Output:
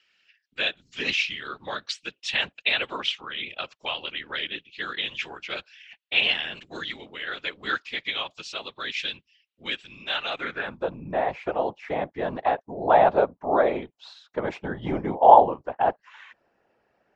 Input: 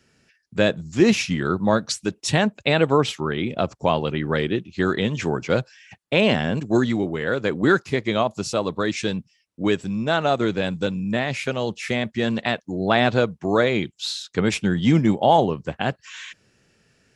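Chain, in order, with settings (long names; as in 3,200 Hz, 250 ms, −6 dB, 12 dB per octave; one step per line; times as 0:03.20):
band-pass filter sweep 3,000 Hz → 770 Hz, 0:10.28–0:10.87
random phases in short frames
high-frequency loss of the air 79 metres
level +6 dB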